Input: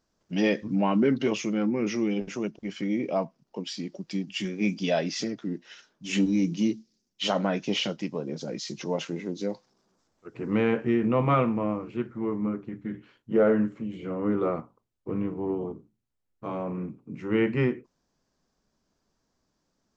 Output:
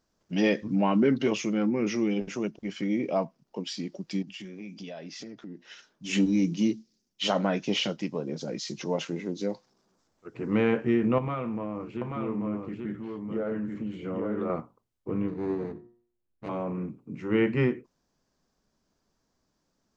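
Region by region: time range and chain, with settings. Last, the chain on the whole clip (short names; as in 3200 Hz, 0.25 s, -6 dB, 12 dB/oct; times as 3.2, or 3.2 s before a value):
4.22–5.68 high shelf 5200 Hz -5 dB + compressor 5:1, threshold -39 dBFS
11.18–14.5 compressor, threshold -28 dBFS + echo 0.835 s -4 dB
15.28–16.49 median filter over 41 samples + LPF 6000 Hz + de-hum 118.9 Hz, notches 16
whole clip: dry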